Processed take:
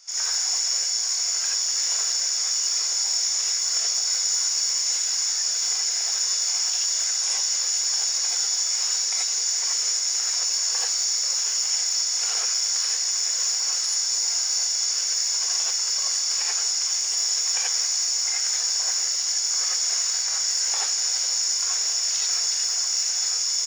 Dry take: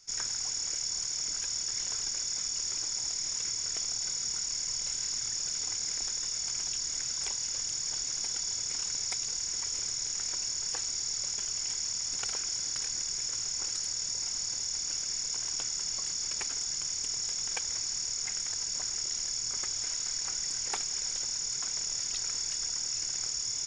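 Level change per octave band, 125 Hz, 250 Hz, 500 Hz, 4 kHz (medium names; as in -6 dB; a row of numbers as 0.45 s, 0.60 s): under -15 dB, no reading, +6.5 dB, +10.5 dB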